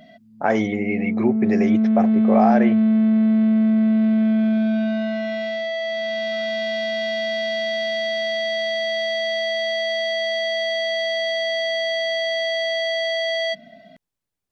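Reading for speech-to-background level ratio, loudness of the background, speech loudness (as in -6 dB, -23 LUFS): -2.0 dB, -21.0 LUFS, -23.0 LUFS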